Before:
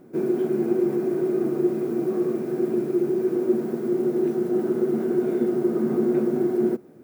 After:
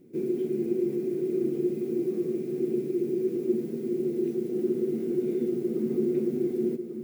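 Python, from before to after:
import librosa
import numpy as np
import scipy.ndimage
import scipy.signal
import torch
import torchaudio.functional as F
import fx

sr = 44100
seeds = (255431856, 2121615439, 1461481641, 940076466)

p1 = fx.band_shelf(x, sr, hz=1000.0, db=-15.0, octaves=1.7)
p2 = p1 + fx.echo_single(p1, sr, ms=1144, db=-8.5, dry=0)
y = F.gain(torch.from_numpy(p2), -5.0).numpy()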